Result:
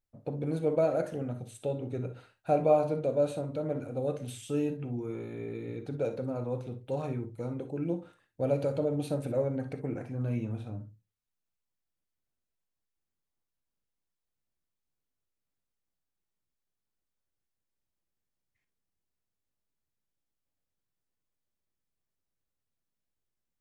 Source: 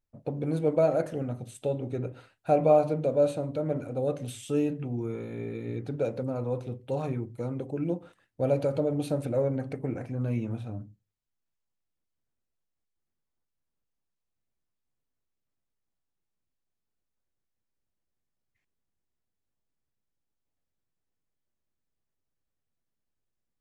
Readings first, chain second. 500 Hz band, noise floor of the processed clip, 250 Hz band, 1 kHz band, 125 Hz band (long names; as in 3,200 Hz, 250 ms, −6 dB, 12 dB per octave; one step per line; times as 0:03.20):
−3.0 dB, below −85 dBFS, −3.0 dB, −3.0 dB, −3.0 dB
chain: reverb whose tail is shaped and stops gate 80 ms rising, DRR 9.5 dB
level −3 dB